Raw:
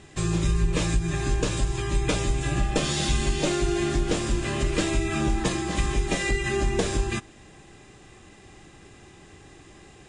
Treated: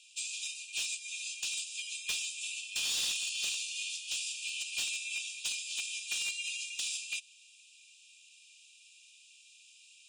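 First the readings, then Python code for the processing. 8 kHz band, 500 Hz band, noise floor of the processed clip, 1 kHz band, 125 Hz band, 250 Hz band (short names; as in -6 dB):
-1.5 dB, under -35 dB, -60 dBFS, -29.5 dB, under -40 dB, under -40 dB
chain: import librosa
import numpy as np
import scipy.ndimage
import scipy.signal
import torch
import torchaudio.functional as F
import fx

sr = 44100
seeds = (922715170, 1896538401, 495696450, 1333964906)

y = scipy.signal.sosfilt(scipy.signal.cheby1(10, 1.0, 2400.0, 'highpass', fs=sr, output='sos'), x)
y = np.clip(y, -10.0 ** (-28.5 / 20.0), 10.0 ** (-28.5 / 20.0))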